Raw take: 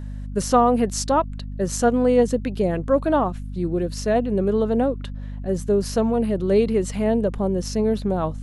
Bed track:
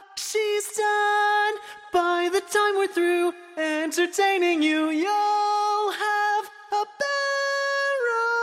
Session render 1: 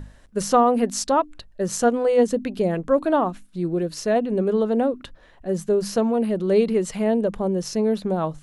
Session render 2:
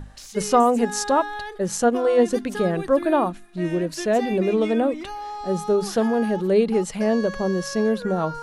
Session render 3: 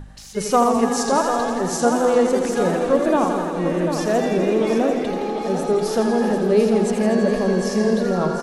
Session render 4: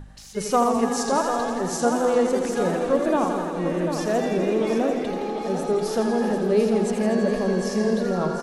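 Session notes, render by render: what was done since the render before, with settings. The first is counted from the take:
mains-hum notches 50/100/150/200/250/300 Hz
mix in bed track −11 dB
on a send: repeating echo 743 ms, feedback 45%, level −8 dB; on the sum: feedback echo with a swinging delay time 83 ms, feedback 79%, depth 90 cents, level −7.5 dB
level −3.5 dB

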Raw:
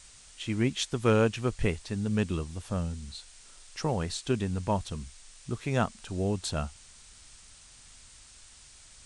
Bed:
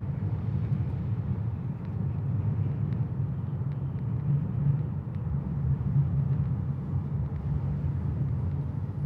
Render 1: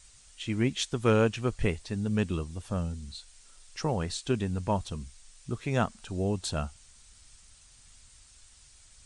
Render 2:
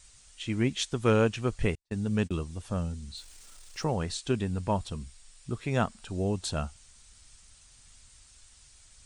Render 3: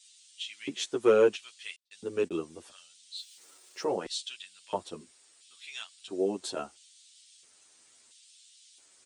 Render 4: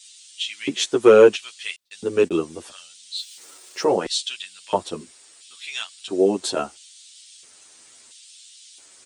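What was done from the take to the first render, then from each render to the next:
broadband denoise 6 dB, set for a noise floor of −54 dBFS
0:01.75–0:02.44: noise gate −35 dBFS, range −41 dB; 0:03.17–0:03.84: converter with a step at zero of −52 dBFS; 0:04.34–0:06.11: notch filter 6,200 Hz
auto-filter high-pass square 0.74 Hz 360–3,300 Hz; barber-pole flanger 9.9 ms −0.37 Hz
level +11 dB; brickwall limiter −2 dBFS, peak gain reduction 1.5 dB

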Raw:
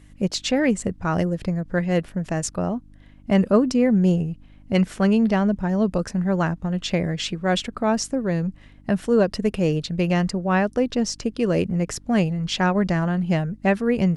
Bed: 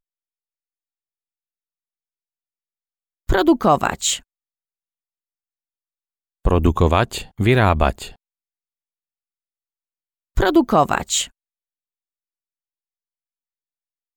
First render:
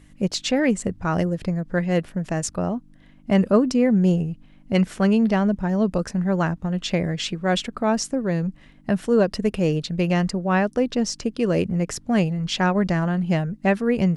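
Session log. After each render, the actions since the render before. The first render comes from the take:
hum removal 50 Hz, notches 2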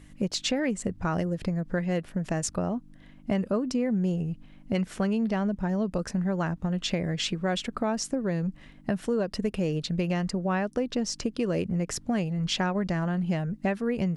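downward compressor 4 to 1, threshold −25 dBFS, peak gain reduction 11.5 dB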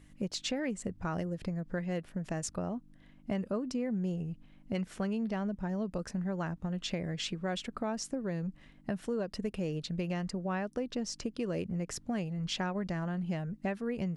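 level −7 dB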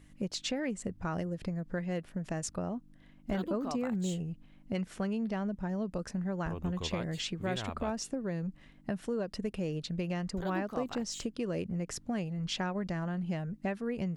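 mix in bed −25 dB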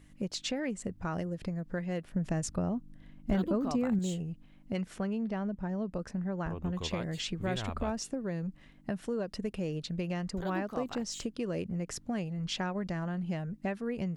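0:02.12–0:03.99: low-shelf EQ 250 Hz +8 dB
0:04.98–0:06.73: high-shelf EQ 3,600 Hz −7.5 dB
0:07.28–0:07.98: low-shelf EQ 77 Hz +9.5 dB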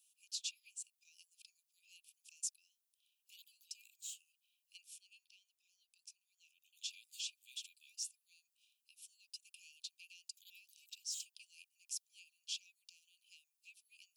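Chebyshev high-pass filter 2,400 Hz, order 10
first difference

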